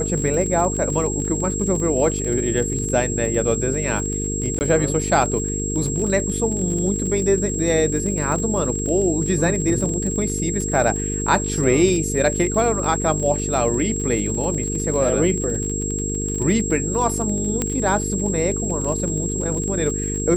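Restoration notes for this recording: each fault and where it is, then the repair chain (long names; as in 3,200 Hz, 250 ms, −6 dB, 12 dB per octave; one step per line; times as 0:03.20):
mains buzz 50 Hz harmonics 9 −26 dBFS
surface crackle 34 per second −26 dBFS
whistle 7,600 Hz −26 dBFS
0:04.59–0:04.61: drop-out 19 ms
0:17.62: click −7 dBFS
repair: click removal
hum removal 50 Hz, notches 9
notch filter 7,600 Hz, Q 30
repair the gap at 0:04.59, 19 ms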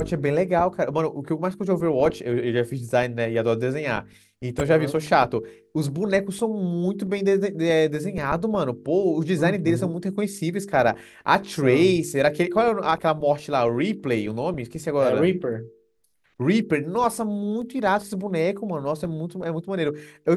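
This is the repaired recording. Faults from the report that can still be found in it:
0:17.62: click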